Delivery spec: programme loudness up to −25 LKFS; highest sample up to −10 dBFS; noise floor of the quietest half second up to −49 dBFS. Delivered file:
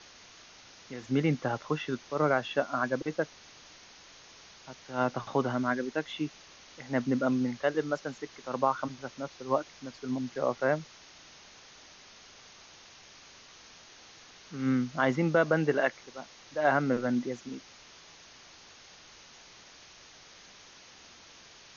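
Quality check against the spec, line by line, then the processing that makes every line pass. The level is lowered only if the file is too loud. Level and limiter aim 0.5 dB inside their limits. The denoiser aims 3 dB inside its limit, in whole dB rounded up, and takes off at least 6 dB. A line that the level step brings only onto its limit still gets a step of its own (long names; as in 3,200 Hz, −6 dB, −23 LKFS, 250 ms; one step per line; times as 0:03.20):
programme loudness −30.5 LKFS: in spec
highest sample −12.0 dBFS: in spec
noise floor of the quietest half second −54 dBFS: in spec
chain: no processing needed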